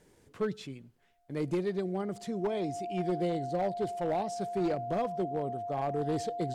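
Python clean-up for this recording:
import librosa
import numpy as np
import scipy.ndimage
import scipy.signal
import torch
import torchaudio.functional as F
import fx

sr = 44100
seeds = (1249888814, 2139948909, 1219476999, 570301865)

y = fx.fix_declip(x, sr, threshold_db=-25.0)
y = fx.notch(y, sr, hz=700.0, q=30.0)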